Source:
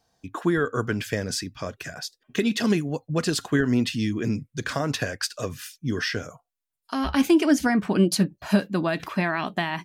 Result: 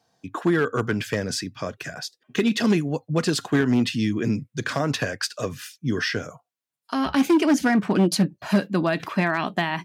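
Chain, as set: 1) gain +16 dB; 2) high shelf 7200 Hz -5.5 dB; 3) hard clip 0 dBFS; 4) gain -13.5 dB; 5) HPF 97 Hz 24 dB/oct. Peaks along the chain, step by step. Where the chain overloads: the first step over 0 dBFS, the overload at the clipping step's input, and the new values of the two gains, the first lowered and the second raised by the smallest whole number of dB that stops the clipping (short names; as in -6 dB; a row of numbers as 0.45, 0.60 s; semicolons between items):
+8.0, +8.0, 0.0, -13.5, -7.0 dBFS; step 1, 8.0 dB; step 1 +8 dB, step 4 -5.5 dB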